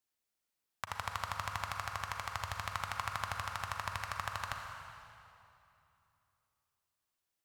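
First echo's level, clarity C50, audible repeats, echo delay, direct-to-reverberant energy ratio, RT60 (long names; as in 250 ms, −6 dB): no echo audible, 3.5 dB, no echo audible, no echo audible, 3.0 dB, 2.9 s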